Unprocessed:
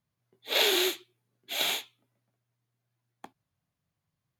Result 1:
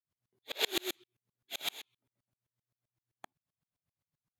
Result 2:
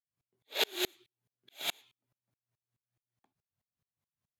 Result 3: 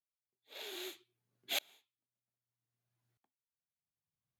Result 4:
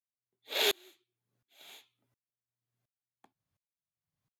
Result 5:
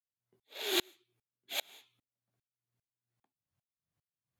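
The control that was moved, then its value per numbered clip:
sawtooth tremolo in dB, rate: 7.7 Hz, 4.7 Hz, 0.63 Hz, 1.4 Hz, 2.5 Hz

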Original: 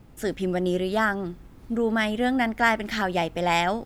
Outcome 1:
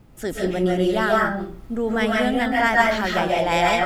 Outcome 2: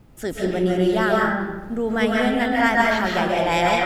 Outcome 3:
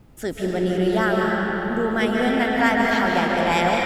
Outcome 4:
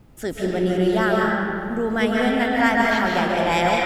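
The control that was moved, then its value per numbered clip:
algorithmic reverb, RT60: 0.43 s, 1.1 s, 5.1 s, 2.4 s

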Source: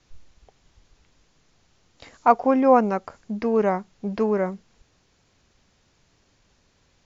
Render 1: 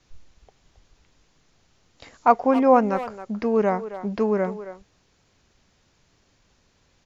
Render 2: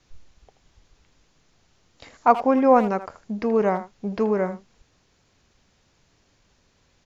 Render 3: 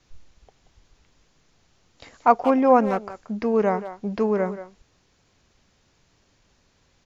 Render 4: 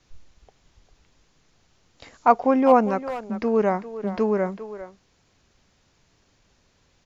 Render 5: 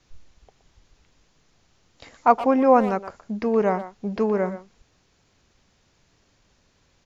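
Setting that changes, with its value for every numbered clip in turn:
speakerphone echo, time: 270 ms, 80 ms, 180 ms, 400 ms, 120 ms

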